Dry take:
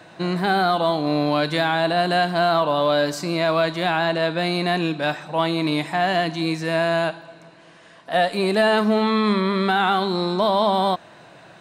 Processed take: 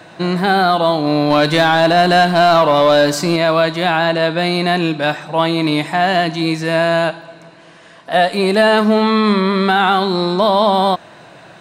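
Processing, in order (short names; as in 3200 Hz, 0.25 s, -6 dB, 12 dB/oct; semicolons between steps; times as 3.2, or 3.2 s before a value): 1.3–3.36 sample leveller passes 1; gain +6 dB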